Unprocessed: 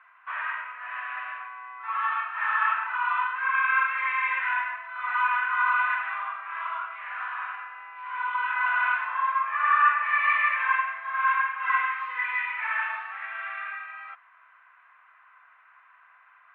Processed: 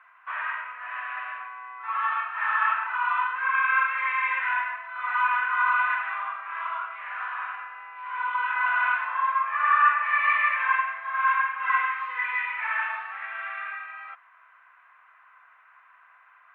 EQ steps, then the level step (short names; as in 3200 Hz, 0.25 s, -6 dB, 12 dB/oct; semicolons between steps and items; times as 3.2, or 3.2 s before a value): low shelf 490 Hz +5.5 dB; 0.0 dB